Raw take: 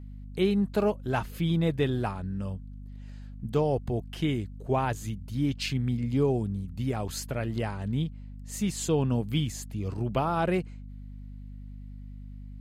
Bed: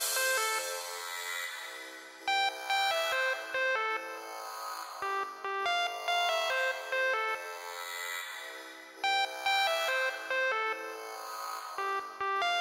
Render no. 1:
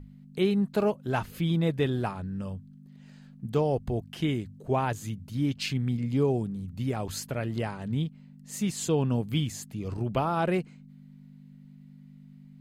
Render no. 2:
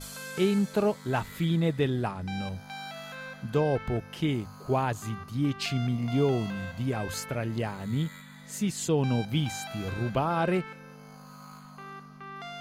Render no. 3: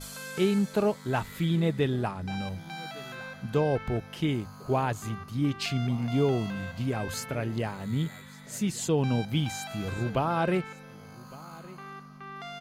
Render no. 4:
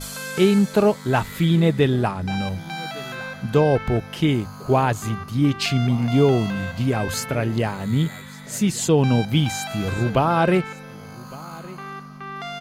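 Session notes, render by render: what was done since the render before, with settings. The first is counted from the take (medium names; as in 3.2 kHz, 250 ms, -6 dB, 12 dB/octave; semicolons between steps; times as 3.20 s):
hum notches 50/100 Hz
add bed -11 dB
delay 1159 ms -21 dB
trim +8.5 dB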